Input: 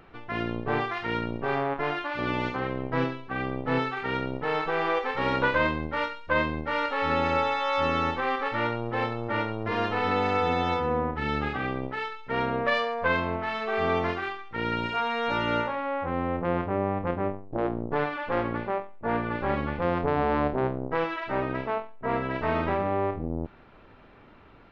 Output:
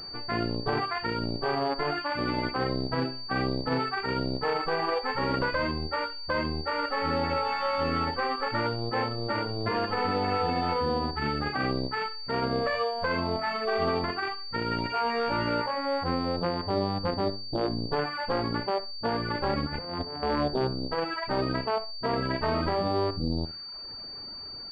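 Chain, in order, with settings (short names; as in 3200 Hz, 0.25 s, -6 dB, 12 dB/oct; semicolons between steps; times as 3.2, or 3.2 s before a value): reverb removal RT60 0.87 s; limiter -22 dBFS, peak gain reduction 9.5 dB; 19.66–20.23 negative-ratio compressor -38 dBFS, ratio -0.5; flutter echo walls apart 10.6 m, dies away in 0.26 s; pulse-width modulation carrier 4600 Hz; gain +4 dB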